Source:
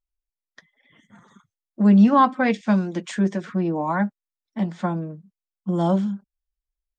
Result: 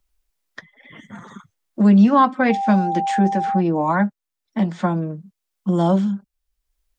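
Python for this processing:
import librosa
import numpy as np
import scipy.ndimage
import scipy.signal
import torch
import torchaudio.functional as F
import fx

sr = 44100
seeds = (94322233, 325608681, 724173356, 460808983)

y = fx.dmg_tone(x, sr, hz=790.0, level_db=-24.0, at=(2.49, 3.59), fade=0.02)
y = fx.band_squash(y, sr, depth_pct=40)
y = y * 10.0 ** (3.5 / 20.0)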